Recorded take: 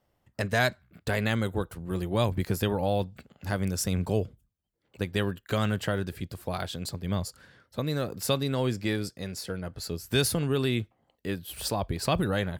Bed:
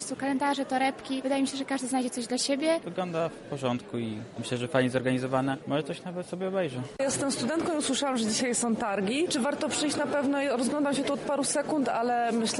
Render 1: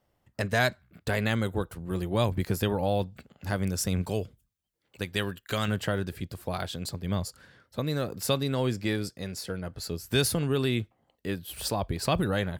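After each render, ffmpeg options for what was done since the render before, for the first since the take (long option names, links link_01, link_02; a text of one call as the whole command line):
ffmpeg -i in.wav -filter_complex "[0:a]asettb=1/sr,asplit=3[link_01][link_02][link_03];[link_01]atrim=end=4.024[link_04];[link_02]atrim=start=4.02:end=5.68,asetpts=PTS-STARTPTS,afade=type=in:duration=0.004:curve=qsin,afade=type=out:start_time=1.656:duration=0.004:curve=qsin,tiltshelf=frequency=1300:gain=-4[link_05];[link_03]atrim=start=5.676[link_06];[link_04][link_05]acrossfade=duration=0.004:curve1=hsin:curve2=qsin[link_07];[link_07][link_06]acrossfade=duration=0.004:curve1=qsin:curve2=hsin" out.wav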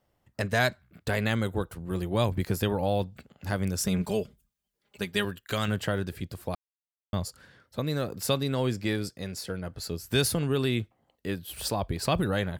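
ffmpeg -i in.wav -filter_complex "[0:a]asettb=1/sr,asplit=3[link_01][link_02][link_03];[link_01]atrim=end=3.834[link_04];[link_02]atrim=start=3.83:end=5.25,asetpts=PTS-STARTPTS,afade=type=in:duration=0.004:curve=qsin,afade=type=out:start_time=1.416:duration=0.004:curve=qsin,aecho=1:1:4.9:0.64,atrim=end_sample=62622[link_05];[link_03]atrim=start=5.246[link_06];[link_04][link_05]acrossfade=duration=0.004:curve1=hsin:curve2=qsin[link_07];[link_07][link_06]acrossfade=duration=0.004:curve1=qsin:curve2=hsin,asplit=3[link_08][link_09][link_10];[link_08]atrim=end=6.55,asetpts=PTS-STARTPTS,afade=type=out:start_time=6.546:duration=0.004:curve=hsin[link_11];[link_09]atrim=start=6.55:end=7.13,asetpts=PTS-STARTPTS,volume=0[link_12];[link_10]atrim=start=7.13,asetpts=PTS-STARTPTS,afade=type=in:duration=0.004:curve=hsin[link_13];[link_11][link_12][link_13]concat=n=3:v=0:a=1" out.wav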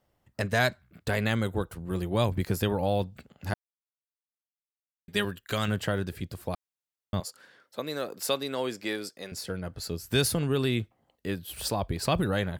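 ffmpeg -i in.wav -filter_complex "[0:a]asettb=1/sr,asplit=3[link_01][link_02][link_03];[link_01]atrim=end=7.204[link_04];[link_02]atrim=start=7.2:end=9.32,asetpts=PTS-STARTPTS,afade=type=in:duration=0.004:curve=qsin,afade=type=out:start_time=2.116:duration=0.004:curve=qsin,highpass=340[link_05];[link_03]atrim=start=9.316[link_06];[link_04][link_05]acrossfade=duration=0.004:curve1=hsin:curve2=qsin[link_07];[link_07][link_06]acrossfade=duration=0.004:curve1=qsin:curve2=hsin,asplit=3[link_08][link_09][link_10];[link_08]atrim=end=3.54,asetpts=PTS-STARTPTS,afade=type=out:start_time=3.536:duration=0.004:curve=hsin[link_11];[link_09]atrim=start=3.54:end=5.08,asetpts=PTS-STARTPTS,volume=0[link_12];[link_10]atrim=start=5.08,asetpts=PTS-STARTPTS,afade=type=in:duration=0.004:curve=hsin[link_13];[link_11][link_12][link_13]concat=n=3:v=0:a=1" out.wav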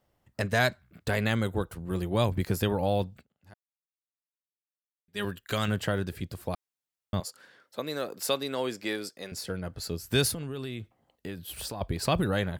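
ffmpeg -i in.wav -filter_complex "[0:a]asettb=1/sr,asplit=3[link_01][link_02][link_03];[link_01]atrim=end=10.314[link_04];[link_02]atrim=start=10.31:end=11.81,asetpts=PTS-STARTPTS,afade=type=in:duration=0.004:curve=qsin,afade=type=out:start_time=1.496:duration=0.004:curve=qsin,acompressor=threshold=-33dB:ratio=5:attack=3.2:release=140:knee=1:detection=peak[link_05];[link_03]atrim=start=11.806[link_06];[link_04][link_05]acrossfade=duration=0.004:curve1=hsin:curve2=qsin[link_07];[link_07][link_06]acrossfade=duration=0.004:curve1=qsin:curve2=hsin,asplit=3[link_08][link_09][link_10];[link_08]atrim=end=3.3,asetpts=PTS-STARTPTS,afade=type=out:start_time=3.13:duration=0.17:curve=qua:silence=0.0749894[link_11];[link_09]atrim=start=3.3:end=5.08,asetpts=PTS-STARTPTS,volume=-22.5dB[link_12];[link_10]atrim=start=5.08,asetpts=PTS-STARTPTS,afade=type=in:duration=0.17:curve=qua:silence=0.0749894[link_13];[link_11][link_12][link_13]concat=n=3:v=0:a=1" out.wav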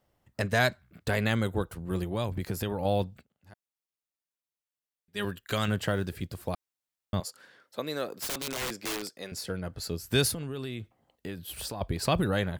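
ffmpeg -i in.wav -filter_complex "[0:a]asettb=1/sr,asplit=3[link_01][link_02][link_03];[link_01]atrim=end=2.034[link_04];[link_02]atrim=start=2.03:end=2.85,asetpts=PTS-STARTPTS,afade=type=in:duration=0.004:curve=qsin,afade=type=out:start_time=0.816:duration=0.004:curve=qsin,acompressor=threshold=-30dB:ratio=2:attack=3.2:release=140:knee=1:detection=peak[link_05];[link_03]atrim=start=2.846[link_06];[link_04][link_05]acrossfade=duration=0.004:curve1=hsin:curve2=qsin[link_07];[link_07][link_06]acrossfade=duration=0.004:curve1=qsin:curve2=hsin,asettb=1/sr,asplit=3[link_08][link_09][link_10];[link_08]atrim=end=5.834[link_11];[link_09]atrim=start=5.83:end=6.51,asetpts=PTS-STARTPTS,afade=type=in:duration=0.004:curve=qsin,afade=type=out:start_time=0.676:duration=0.004:curve=qsin,acrusher=bits=9:mode=log:mix=0:aa=0.000001[link_12];[link_10]atrim=start=6.506[link_13];[link_11][link_12]acrossfade=duration=0.004:curve1=hsin:curve2=qsin[link_14];[link_14][link_13]acrossfade=duration=0.004:curve1=qsin:curve2=hsin,asettb=1/sr,asplit=3[link_15][link_16][link_17];[link_15]atrim=end=8.174[link_18];[link_16]atrim=start=8.17:end=9.1,asetpts=PTS-STARTPTS,afade=type=in:duration=0.004:curve=qsin,afade=type=out:start_time=0.926:duration=0.004:curve=qsin,aeval=exprs='(mod(23.7*val(0)+1,2)-1)/23.7':channel_layout=same[link_19];[link_17]atrim=start=9.096[link_20];[link_18][link_19]acrossfade=duration=0.004:curve1=hsin:curve2=qsin[link_21];[link_21][link_20]acrossfade=duration=0.004:curve1=qsin:curve2=hsin" out.wav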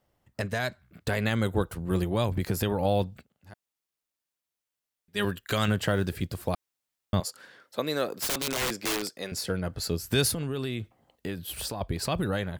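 ffmpeg -i in.wav -af "alimiter=limit=-18dB:level=0:latency=1:release=186,dynaudnorm=framelen=220:gausssize=11:maxgain=4.5dB" out.wav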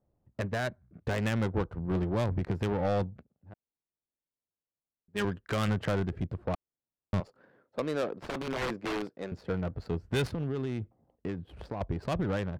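ffmpeg -i in.wav -af "adynamicsmooth=sensitivity=2.5:basefreq=670,asoftclip=type=tanh:threshold=-22dB" out.wav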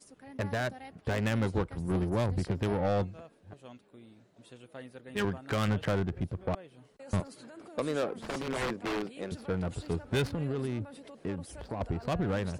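ffmpeg -i in.wav -i bed.wav -filter_complex "[1:a]volume=-21dB[link_01];[0:a][link_01]amix=inputs=2:normalize=0" out.wav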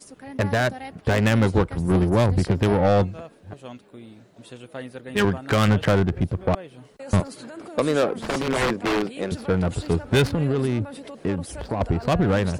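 ffmpeg -i in.wav -af "volume=10.5dB" out.wav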